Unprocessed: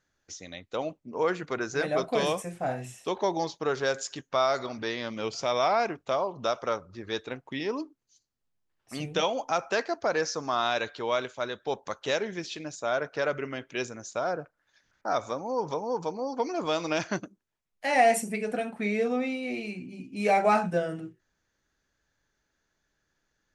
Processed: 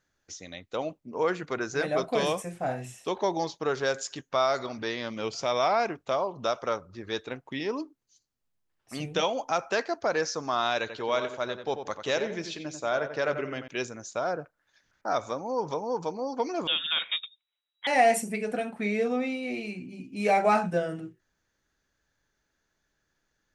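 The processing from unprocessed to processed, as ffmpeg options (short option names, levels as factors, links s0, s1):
-filter_complex "[0:a]asettb=1/sr,asplit=3[s0][s1][s2];[s0]atrim=end=10.804[s3];[s1]atrim=start=10.8:end=13.68,asetpts=PTS-STARTPTS,afade=t=in:d=0.004:c=qsin,afade=t=out:st=2.876:d=0.004:c=qsin,asplit=2[s4][s5];[s5]adelay=90,lowpass=f=2600:p=1,volume=0.398,asplit=2[s6][s7];[s7]adelay=90,lowpass=f=2600:p=1,volume=0.36,asplit=2[s8][s9];[s9]adelay=90,lowpass=f=2600:p=1,volume=0.36,asplit=2[s10][s11];[s11]adelay=90,lowpass=f=2600:p=1,volume=0.36[s12];[s4][s6][s8][s10][s12]amix=inputs=5:normalize=0,atrim=end_sample=127008[s13];[s2]atrim=start=13.676[s14];[s3][s13]acrossfade=d=0.004:c1=hsin:c2=qsin[s15];[s15][s14]acrossfade=d=0.004:c1=qsin:c2=hsin,asettb=1/sr,asplit=3[s16][s17][s18];[s16]atrim=end=16.674[s19];[s17]atrim=start=16.67:end=17.87,asetpts=PTS-STARTPTS,afade=t=in:d=0.004:c=qsin,afade=t=out:st=1.196:d=0.004:c=qsin,lowpass=f=3300:t=q:w=0.5098,lowpass=f=3300:t=q:w=0.6013,lowpass=f=3300:t=q:w=0.9,lowpass=f=3300:t=q:w=2.563,afreqshift=-3900[s20];[s18]atrim=start=17.866[s21];[s19][s20]acrossfade=d=0.004:c1=hsin:c2=qsin[s22];[s22][s21]acrossfade=d=0.004:c1=qsin:c2=hsin"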